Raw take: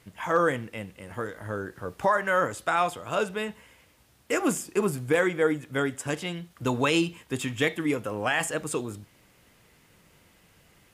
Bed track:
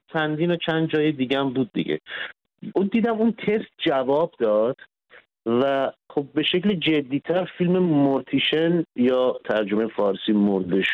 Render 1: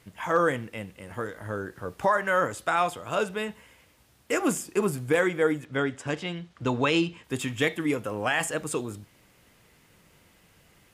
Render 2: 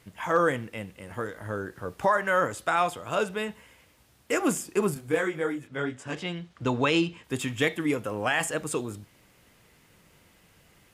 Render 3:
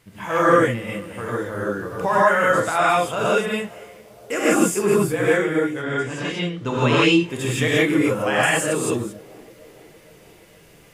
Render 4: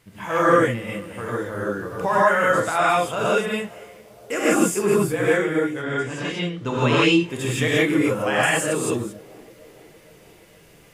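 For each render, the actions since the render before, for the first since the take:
5.65–7.24 LPF 5400 Hz
4.94–6.15 detuned doubles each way 27 cents
narrowing echo 0.462 s, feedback 68%, band-pass 470 Hz, level -22.5 dB; non-linear reverb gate 0.19 s rising, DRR -7.5 dB
gain -1 dB

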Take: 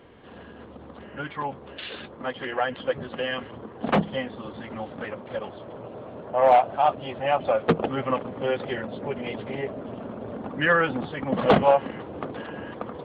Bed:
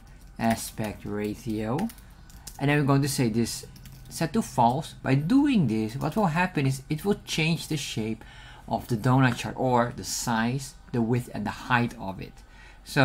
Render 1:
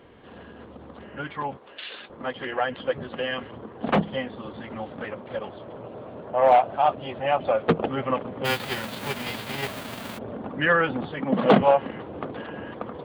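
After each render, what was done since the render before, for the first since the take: 1.57–2.1 HPF 850 Hz 6 dB/oct; 8.44–10.17 spectral whitening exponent 0.3; 11.19–11.61 resonant high-pass 190 Hz, resonance Q 1.5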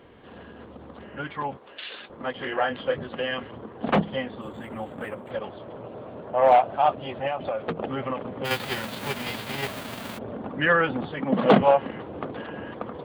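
2.32–2.99 doubler 28 ms -5.5 dB; 4.41–5.31 decimation joined by straight lines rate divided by 4×; 7.27–8.51 compressor, threshold -24 dBFS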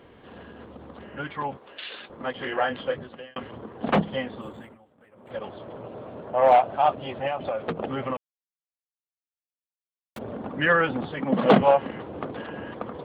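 2.79–3.36 fade out; 4.31–5.6 dip -23 dB, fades 0.47 s equal-power; 8.17–10.16 mute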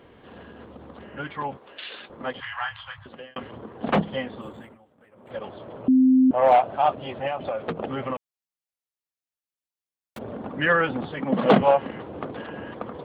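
2.4–3.06 Chebyshev band-stop 110–950 Hz, order 3; 5.88–6.31 bleep 259 Hz -13 dBFS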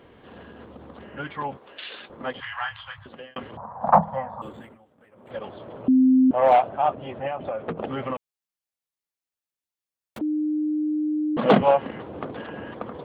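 3.57–4.42 EQ curve 180 Hz 0 dB, 370 Hz -25 dB, 560 Hz +3 dB, 910 Hz +15 dB, 3100 Hz -24 dB, 5800 Hz -6 dB; 6.69–7.78 air absorption 320 m; 10.21–11.37 bleep 304 Hz -21.5 dBFS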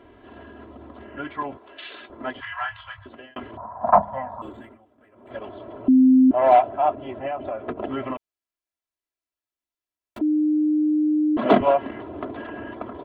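high shelf 3100 Hz -8 dB; comb 3 ms, depth 76%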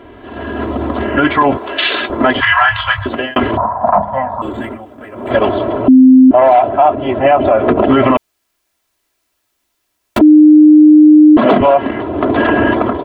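AGC gain up to 12.5 dB; maximiser +12.5 dB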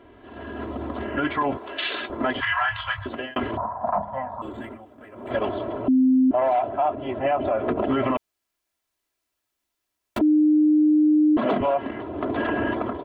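gain -13 dB

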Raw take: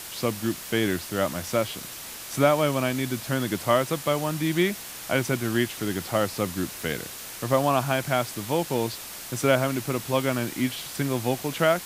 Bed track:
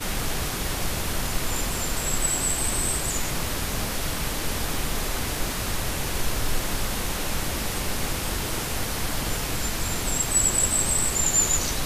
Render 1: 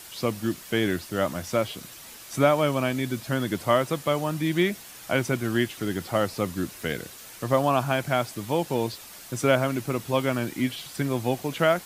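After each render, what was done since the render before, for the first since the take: denoiser 7 dB, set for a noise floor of -39 dBFS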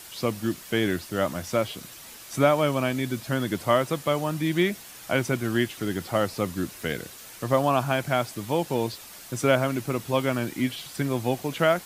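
nothing audible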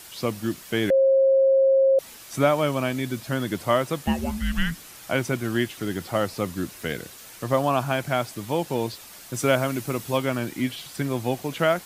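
0.9–1.99 bleep 537 Hz -14.5 dBFS; 4.06–4.97 frequency shift -370 Hz; 9.34–10.18 high shelf 5100 Hz +5 dB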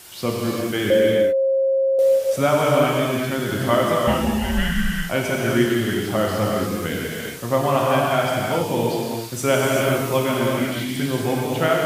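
non-linear reverb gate 0.44 s flat, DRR -4 dB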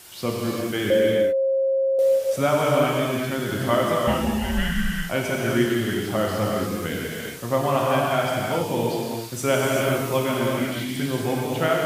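gain -2.5 dB

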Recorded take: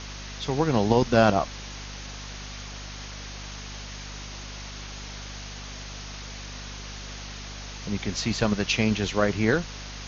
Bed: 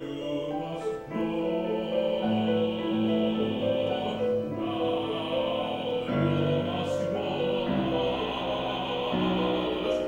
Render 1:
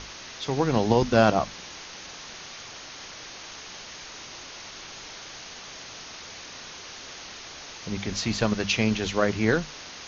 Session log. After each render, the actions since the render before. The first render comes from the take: notches 50/100/150/200/250 Hz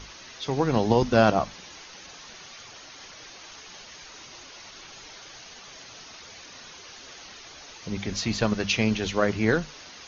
denoiser 7 dB, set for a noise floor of -42 dBFS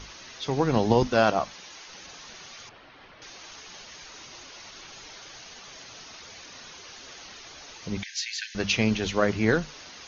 1.07–1.88 low shelf 300 Hz -9 dB; 2.69–3.22 air absorption 370 m; 8.03–8.55 brick-wall FIR high-pass 1500 Hz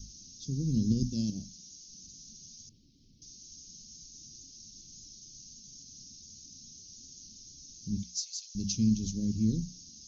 elliptic band-stop 230–5600 Hz, stop band 80 dB; notches 60/120/180/240 Hz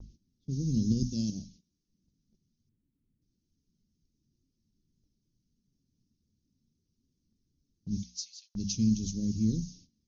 low-pass opened by the level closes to 1100 Hz, open at -26.5 dBFS; gate -55 dBFS, range -15 dB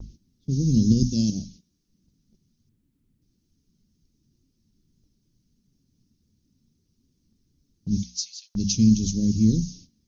gain +9 dB

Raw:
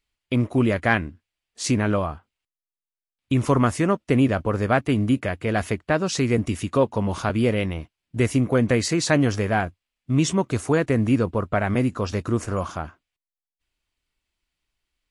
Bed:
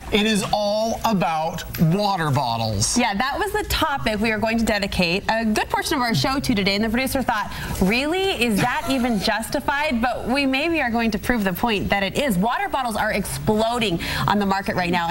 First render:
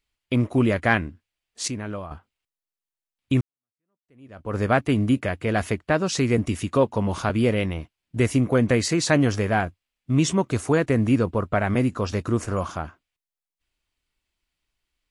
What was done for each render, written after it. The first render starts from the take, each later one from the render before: 1.68–2.11 gain -10 dB; 3.41–4.57 fade in exponential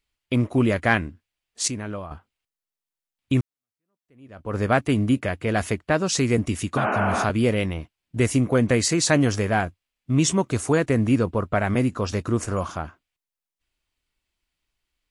6.8–7.21 spectral repair 210–3100 Hz after; dynamic EQ 8200 Hz, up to +6 dB, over -44 dBFS, Q 0.88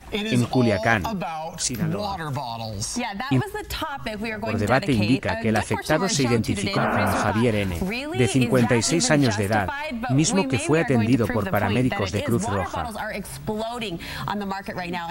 add bed -8 dB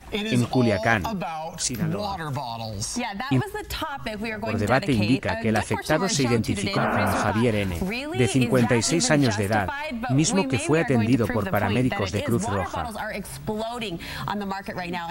gain -1 dB

